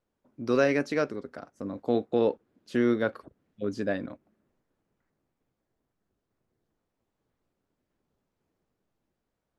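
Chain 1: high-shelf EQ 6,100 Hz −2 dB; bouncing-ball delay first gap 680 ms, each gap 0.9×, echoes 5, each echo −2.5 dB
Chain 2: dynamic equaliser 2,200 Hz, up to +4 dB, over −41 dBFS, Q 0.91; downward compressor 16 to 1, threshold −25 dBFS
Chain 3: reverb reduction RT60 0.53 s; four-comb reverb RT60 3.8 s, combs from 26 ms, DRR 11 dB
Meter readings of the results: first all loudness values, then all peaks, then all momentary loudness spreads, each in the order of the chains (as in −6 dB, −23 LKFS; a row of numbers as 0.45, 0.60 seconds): −27.5, −33.5, −29.5 LKFS; −11.0, −16.0, −13.0 dBFS; 17, 13, 15 LU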